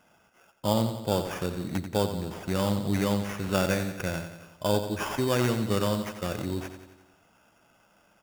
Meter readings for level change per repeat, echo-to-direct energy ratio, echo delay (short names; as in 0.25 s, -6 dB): -5.0 dB, -8.0 dB, 89 ms